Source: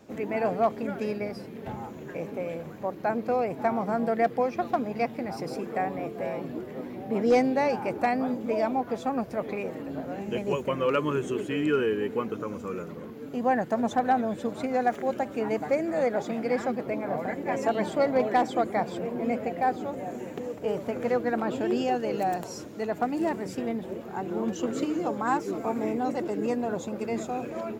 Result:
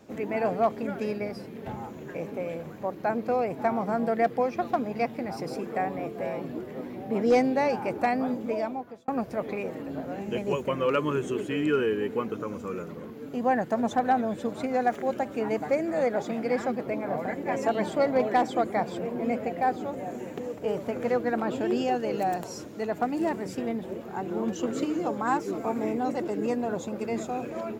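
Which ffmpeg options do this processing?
ffmpeg -i in.wav -filter_complex "[0:a]asplit=2[link_01][link_02];[link_01]atrim=end=9.08,asetpts=PTS-STARTPTS,afade=type=out:start_time=8.4:duration=0.68[link_03];[link_02]atrim=start=9.08,asetpts=PTS-STARTPTS,afade=type=in:duration=0.004:curve=hsin[link_04];[link_03][link_04]concat=n=2:v=0:a=1" out.wav

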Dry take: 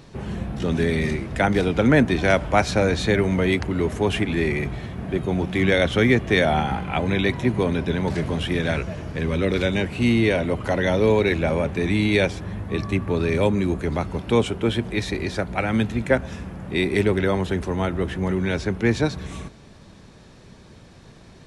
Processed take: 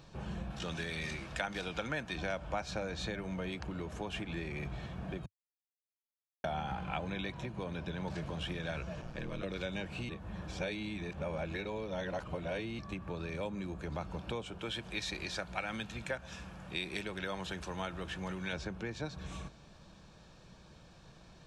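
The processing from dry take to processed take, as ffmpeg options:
ffmpeg -i in.wav -filter_complex "[0:a]asettb=1/sr,asplit=3[link_01][link_02][link_03];[link_01]atrim=end=0.504[link_04];[link_02]atrim=start=0.5:end=2.16,asetpts=PTS-STARTPTS,afade=type=in:duration=0.004:curve=qsin,afade=type=out:start_time=1.656:duration=0.004:curve=qsin,tiltshelf=frequency=880:gain=-5.5[link_05];[link_03]atrim=start=2.156[link_06];[link_04][link_05]acrossfade=duration=0.004:curve1=hsin:curve2=qsin[link_07];[link_07][link_06]acrossfade=duration=0.004:curve1=qsin:curve2=hsin,asettb=1/sr,asplit=3[link_08][link_09][link_10];[link_08]atrim=end=9.014[link_11];[link_09]atrim=start=9.01:end=9.43,asetpts=PTS-STARTPTS,afade=type=in:duration=0.004:curve=qsin,afade=type=out:start_time=0.416:duration=0.004:curve=qsin,aeval=exprs='val(0)*sin(2*PI*59*n/s)':channel_layout=same[link_12];[link_10]atrim=start=9.426[link_13];[link_11][link_12]acrossfade=duration=0.004:curve1=hsin:curve2=qsin[link_14];[link_14][link_13]acrossfade=duration=0.004:curve1=qsin:curve2=hsin,asettb=1/sr,asplit=3[link_15][link_16][link_17];[link_15]atrim=end=14.594[link_18];[link_16]atrim=start=14.59:end=18.53,asetpts=PTS-STARTPTS,afade=type=in:duration=0.004:curve=qsin,afade=type=out:start_time=3.936:duration=0.004:curve=qsin,tiltshelf=frequency=1200:gain=-5[link_19];[link_17]atrim=start=18.526[link_20];[link_18][link_19]acrossfade=duration=0.004:curve1=hsin:curve2=qsin[link_21];[link_21][link_20]acrossfade=duration=0.004:curve1=qsin:curve2=hsin,asplit=5[link_22][link_23][link_24][link_25][link_26];[link_22]atrim=end=5.26,asetpts=PTS-STARTPTS,afade=type=out:start_time=5.256:duration=0.004:curve=hsin[link_27];[link_23]atrim=start=5.26:end=6.44,asetpts=PTS-STARTPTS,volume=0[link_28];[link_24]atrim=start=6.44:end=10.092,asetpts=PTS-STARTPTS,afade=type=in:duration=0.004:curve=hsin[link_29];[link_25]atrim=start=10.088:end=12.792,asetpts=PTS-STARTPTS,areverse[link_30];[link_26]atrim=start=12.788[link_31];[link_27][link_28][link_29]concat=n=3:v=0:a=1[link_32];[link_32][link_30]acrossfade=duration=0.004:curve1=hsin:curve2=hsin[link_33];[link_33][link_31]acrossfade=duration=0.004:curve1=hsin:curve2=hsin,bandreject=frequency=2000:width=6.3,acompressor=threshold=-25dB:ratio=5,equalizer=frequency=100:width_type=o:width=0.33:gain=-11,equalizer=frequency=250:width_type=o:width=0.33:gain=-10,equalizer=frequency=400:width_type=o:width=0.33:gain=-8,equalizer=frequency=10000:width_type=o:width=0.33:gain=-11,volume=-7.5dB" out.wav

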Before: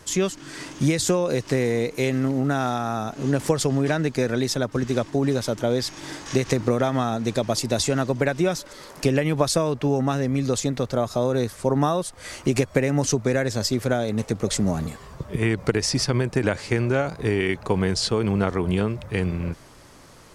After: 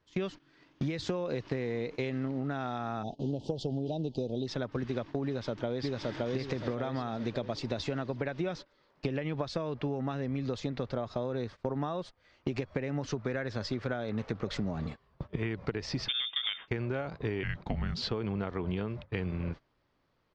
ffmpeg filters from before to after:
ffmpeg -i in.wav -filter_complex "[0:a]asplit=3[link_01][link_02][link_03];[link_01]afade=type=out:start_time=3.02:duration=0.02[link_04];[link_02]asuperstop=centerf=1600:order=12:qfactor=0.75,afade=type=in:start_time=3.02:duration=0.02,afade=type=out:start_time=4.46:duration=0.02[link_05];[link_03]afade=type=in:start_time=4.46:duration=0.02[link_06];[link_04][link_05][link_06]amix=inputs=3:normalize=0,asplit=2[link_07][link_08];[link_08]afade=type=in:start_time=5.26:duration=0.01,afade=type=out:start_time=6.17:duration=0.01,aecho=0:1:570|1140|1710|2280|2850:0.944061|0.377624|0.15105|0.0604199|0.024168[link_09];[link_07][link_09]amix=inputs=2:normalize=0,asettb=1/sr,asplit=3[link_10][link_11][link_12];[link_10]atrim=end=13.024[link_13];[link_11]atrim=start=13.02:end=14.6,asetpts=PTS-STARTPTS,afade=type=in:duration=0.004:curve=qsin,afade=type=out:start_time=1.576:duration=0.004:curve=qsin,equalizer=frequency=1400:width=1.5:gain=5[link_14];[link_12]atrim=start=14.596[link_15];[link_13][link_14]acrossfade=duration=0.004:curve1=hsin:curve2=qsin[link_16];[link_16][link_15]acrossfade=duration=0.004:curve1=qsin:curve2=hsin,asettb=1/sr,asplit=3[link_17][link_18][link_19];[link_17]atrim=end=16.084[link_20];[link_18]atrim=start=16.08:end=16.68,asetpts=PTS-STARTPTS,afade=type=in:duration=0.004:curve=qsin,afade=type=out:start_time=0.596:duration=0.004:curve=qsin,lowpass=frequency=3100:width_type=q:width=0.5098,lowpass=frequency=3100:width_type=q:width=0.6013,lowpass=frequency=3100:width_type=q:width=0.9,lowpass=frequency=3100:width_type=q:width=2.563,afreqshift=-3700[link_21];[link_19]atrim=start=16.676[link_22];[link_20][link_21]acrossfade=duration=0.004:curve1=hsin:curve2=qsin[link_23];[link_23][link_22]acrossfade=duration=0.004:curve1=qsin:curve2=hsin,asettb=1/sr,asplit=3[link_24][link_25][link_26];[link_24]atrim=end=17.434[link_27];[link_25]atrim=start=17.43:end=18.02,asetpts=PTS-STARTPTS,afade=type=in:duration=0.004:curve=qsin,afade=type=out:start_time=0.586:duration=0.004:curve=qsin,afreqshift=-260[link_28];[link_26]atrim=start=18.016[link_29];[link_27][link_28]acrossfade=duration=0.004:curve1=hsin:curve2=qsin[link_30];[link_30][link_29]acrossfade=duration=0.004:curve1=qsin:curve2=hsin,lowpass=frequency=4300:width=0.5412,lowpass=frequency=4300:width=1.3066,agate=range=-21dB:threshold=-32dB:ratio=16:detection=peak,acompressor=threshold=-25dB:ratio=6,volume=-4.5dB" out.wav

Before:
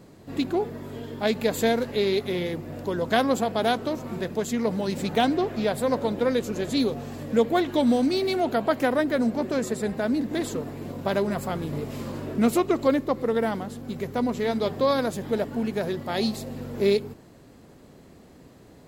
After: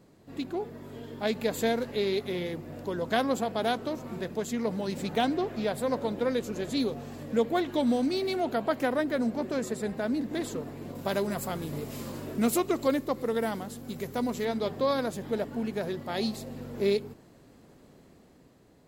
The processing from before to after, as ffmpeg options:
ffmpeg -i in.wav -filter_complex "[0:a]asettb=1/sr,asplit=3[link_01][link_02][link_03];[link_01]atrim=end=10.954[link_04];[link_02]atrim=start=10.95:end=14.45,asetpts=PTS-STARTPTS,afade=type=in:duration=0.004:curve=qsin,afade=type=out:start_time=3.496:duration=0.004:curve=qsin,highshelf=frequency=5300:gain=10.5[link_05];[link_03]atrim=start=14.446[link_06];[link_04][link_05]acrossfade=duration=0.004:curve1=hsin:curve2=qsin[link_07];[link_07][link_06]acrossfade=duration=0.004:curve1=qsin:curve2=hsin,dynaudnorm=framelen=130:gausssize=13:maxgain=4dB,equalizer=frequency=82:width_type=o:width=0.77:gain=-2.5,volume=-8.5dB" out.wav

